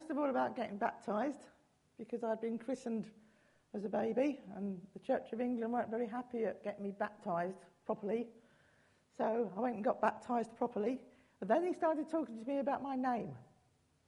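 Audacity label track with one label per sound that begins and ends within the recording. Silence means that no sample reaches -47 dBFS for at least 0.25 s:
1.990000	3.080000	sound
3.740000	7.570000	sound
7.890000	8.260000	sound
9.200000	10.980000	sound
11.420000	13.370000	sound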